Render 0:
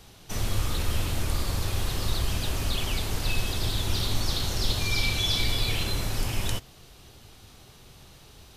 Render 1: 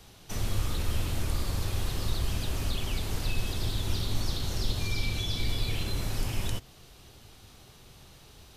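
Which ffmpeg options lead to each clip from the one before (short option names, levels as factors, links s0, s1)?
-filter_complex "[0:a]acrossover=split=440[s0][s1];[s1]acompressor=threshold=0.0141:ratio=2[s2];[s0][s2]amix=inputs=2:normalize=0,volume=0.794"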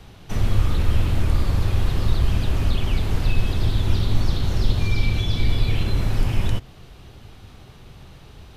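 -af "bass=f=250:g=4,treble=f=4000:g=-11,volume=2.24"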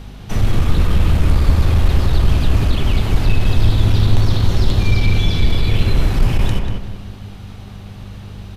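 -filter_complex "[0:a]aeval=exprs='0.562*(cos(1*acos(clip(val(0)/0.562,-1,1)))-cos(1*PI/2))+0.158*(cos(5*acos(clip(val(0)/0.562,-1,1)))-cos(5*PI/2))+0.0562*(cos(7*acos(clip(val(0)/0.562,-1,1)))-cos(7*PI/2))':c=same,aeval=exprs='val(0)+0.02*(sin(2*PI*50*n/s)+sin(2*PI*2*50*n/s)/2+sin(2*PI*3*50*n/s)/3+sin(2*PI*4*50*n/s)/4+sin(2*PI*5*50*n/s)/5)':c=same,asplit=2[s0][s1];[s1]adelay=190,lowpass=f=2600:p=1,volume=0.631,asplit=2[s2][s3];[s3]adelay=190,lowpass=f=2600:p=1,volume=0.37,asplit=2[s4][s5];[s5]adelay=190,lowpass=f=2600:p=1,volume=0.37,asplit=2[s6][s7];[s7]adelay=190,lowpass=f=2600:p=1,volume=0.37,asplit=2[s8][s9];[s9]adelay=190,lowpass=f=2600:p=1,volume=0.37[s10];[s0][s2][s4][s6][s8][s10]amix=inputs=6:normalize=0,volume=1.12"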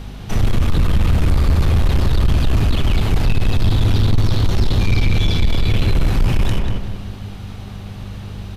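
-af "asoftclip=type=tanh:threshold=0.282,volume=1.33"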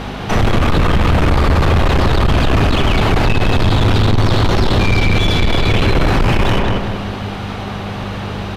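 -filter_complex "[0:a]asplit=2[s0][s1];[s1]highpass=f=720:p=1,volume=11.2,asoftclip=type=tanh:threshold=0.376[s2];[s0][s2]amix=inputs=2:normalize=0,lowpass=f=1300:p=1,volume=0.501,volume=1.78"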